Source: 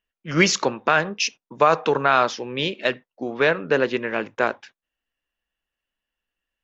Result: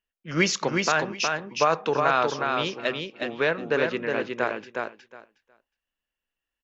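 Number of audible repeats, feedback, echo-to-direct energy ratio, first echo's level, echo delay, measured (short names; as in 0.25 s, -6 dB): 2, 16%, -4.0 dB, -4.0 dB, 0.364 s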